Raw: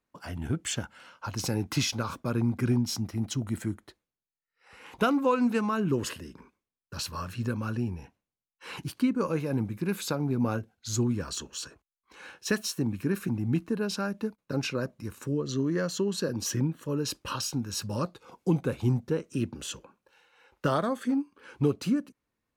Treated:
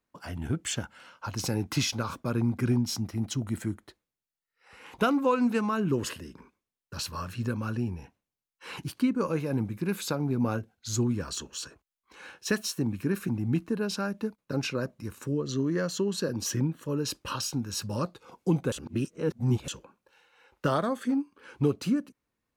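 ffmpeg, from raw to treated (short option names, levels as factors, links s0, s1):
-filter_complex "[0:a]asplit=3[s0][s1][s2];[s0]atrim=end=18.722[s3];[s1]atrim=start=18.718:end=19.682,asetpts=PTS-STARTPTS,areverse[s4];[s2]atrim=start=19.678[s5];[s3][s4]acrossfade=d=0.004:c1=hsin:c2=hsin[s6];[s6][s5]acrossfade=d=0.004:c1=hsin:c2=hsin"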